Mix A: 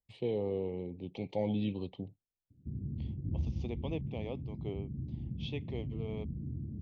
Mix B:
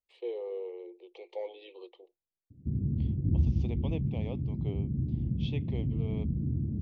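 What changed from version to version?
first voice: add Chebyshev high-pass with heavy ripple 340 Hz, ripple 6 dB
background +8.5 dB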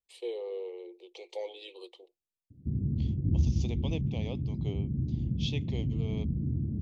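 master: remove low-pass filter 2,200 Hz 12 dB per octave

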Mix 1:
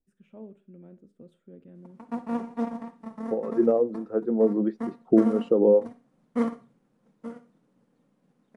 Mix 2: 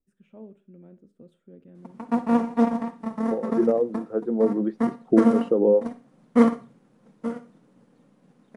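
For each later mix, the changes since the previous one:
background +9.0 dB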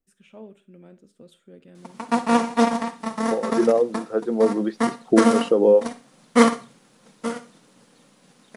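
master: remove drawn EQ curve 260 Hz 0 dB, 1,900 Hz −11 dB, 4,200 Hz −19 dB

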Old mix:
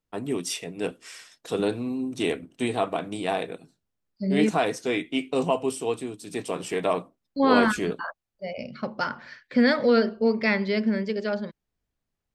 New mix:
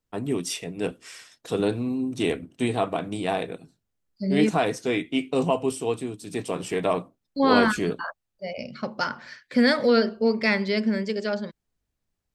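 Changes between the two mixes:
first voice: add low-shelf EQ 140 Hz +9.5 dB
second voice: remove high-frequency loss of the air 120 metres

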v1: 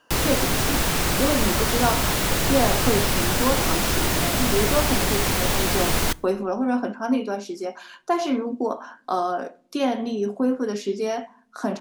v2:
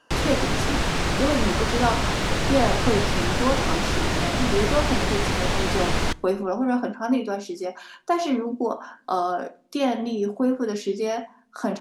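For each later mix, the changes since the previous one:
background: add high-frequency loss of the air 85 metres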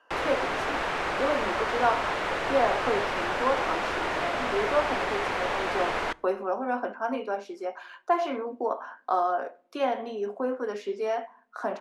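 master: add three-way crossover with the lows and the highs turned down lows −19 dB, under 400 Hz, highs −15 dB, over 2,600 Hz

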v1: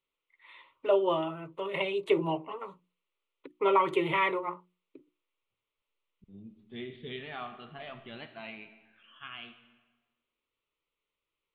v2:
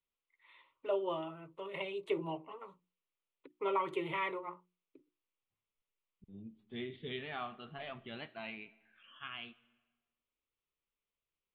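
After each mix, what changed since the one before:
first voice −9.0 dB
second voice: send −10.5 dB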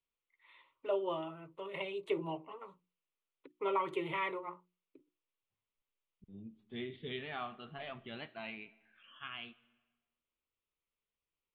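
nothing changed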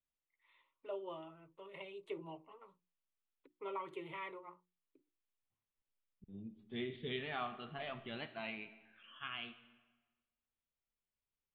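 first voice −9.5 dB
second voice: send +7.5 dB

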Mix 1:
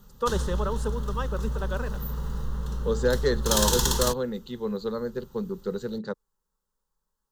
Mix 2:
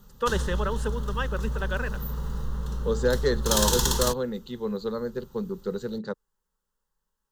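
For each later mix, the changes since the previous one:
first voice: add flat-topped bell 2,200 Hz +8.5 dB 1.3 octaves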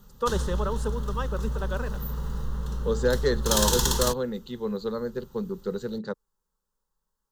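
first voice: add flat-topped bell 2,200 Hz −8.5 dB 1.3 octaves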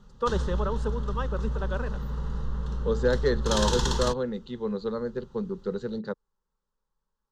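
master: add high-frequency loss of the air 110 metres

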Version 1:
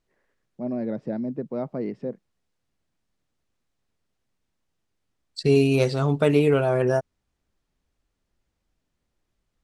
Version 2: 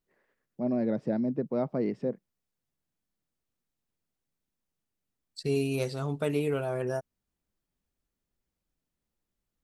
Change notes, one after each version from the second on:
second voice −10.0 dB
master: remove high-frequency loss of the air 53 metres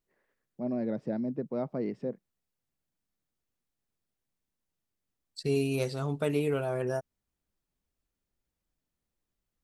first voice −3.5 dB

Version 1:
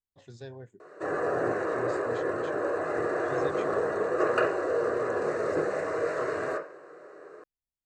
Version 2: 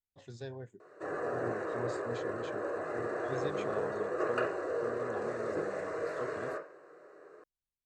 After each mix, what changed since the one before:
background −7.0 dB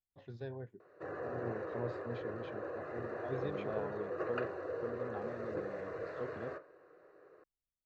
first voice: add high-frequency loss of the air 92 metres
background: send −11.0 dB
master: add high-frequency loss of the air 210 metres

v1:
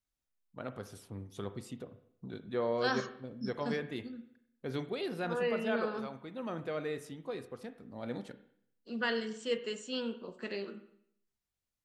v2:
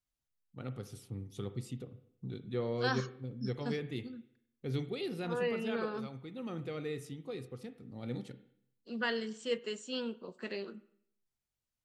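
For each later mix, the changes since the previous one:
first voice: add thirty-one-band graphic EQ 125 Hz +10 dB, 630 Hz −12 dB, 1,000 Hz −11 dB, 1,600 Hz −10 dB
second voice: send −8.5 dB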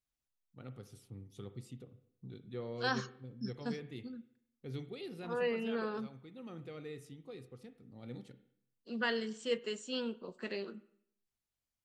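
first voice −7.0 dB

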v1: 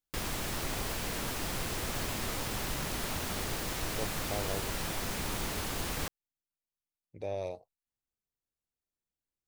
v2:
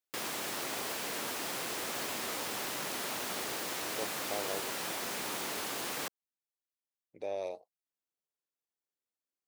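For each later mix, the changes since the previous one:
master: add high-pass filter 300 Hz 12 dB per octave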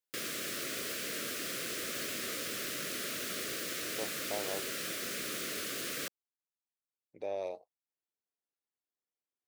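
speech: add high-shelf EQ 5,100 Hz −6.5 dB
background: add Butterworth band-reject 870 Hz, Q 1.3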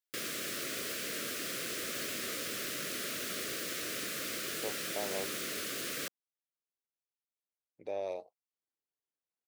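speech: entry +0.65 s

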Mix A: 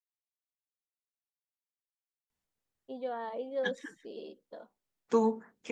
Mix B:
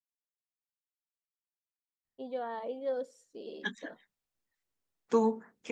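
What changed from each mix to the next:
first voice: entry −0.70 s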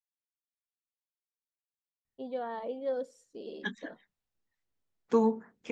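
second voice: add high-frequency loss of the air 64 metres
master: add low-shelf EQ 220 Hz +5.5 dB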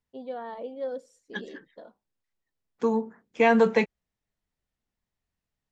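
first voice: entry −2.05 s
second voice: entry −2.30 s

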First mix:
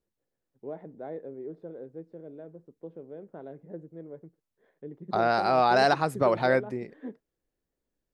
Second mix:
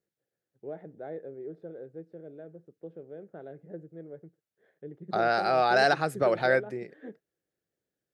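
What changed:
second voice: add high-pass filter 140 Hz
master: add thirty-one-band graphic EQ 250 Hz −8 dB, 1,000 Hz −11 dB, 1,600 Hz +4 dB

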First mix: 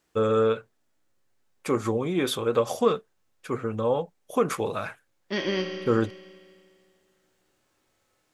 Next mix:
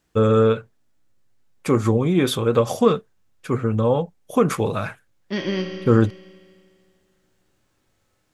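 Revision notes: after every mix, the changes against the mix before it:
first voice +4.0 dB
master: add bass and treble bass +9 dB, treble 0 dB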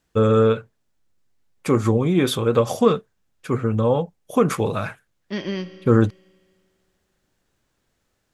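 second voice: send −11.0 dB

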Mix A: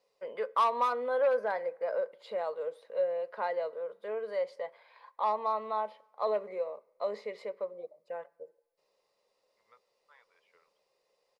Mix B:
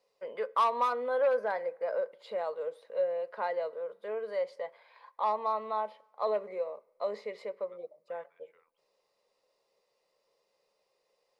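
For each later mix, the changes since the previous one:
second voice: entry −2.00 s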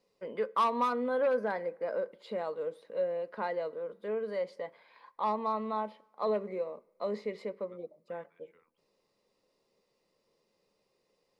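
master: add low shelf with overshoot 390 Hz +11 dB, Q 1.5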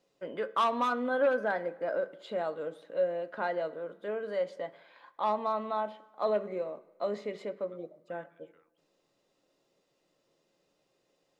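first voice: send +10.0 dB
master: remove EQ curve with evenly spaced ripples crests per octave 0.89, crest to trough 7 dB

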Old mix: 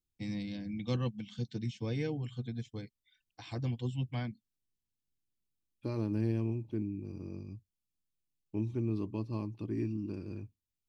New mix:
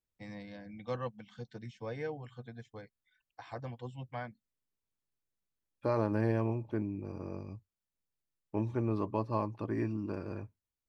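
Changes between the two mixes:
first voice −9.5 dB
master: add flat-topped bell 960 Hz +14 dB 2.3 octaves

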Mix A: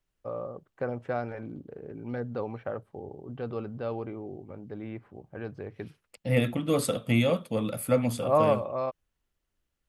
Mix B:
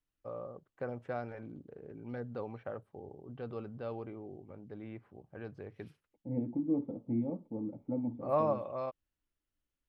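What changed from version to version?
first voice −7.0 dB
second voice: add formant resonators in series u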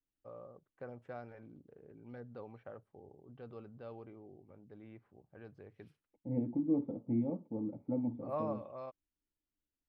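first voice −8.0 dB

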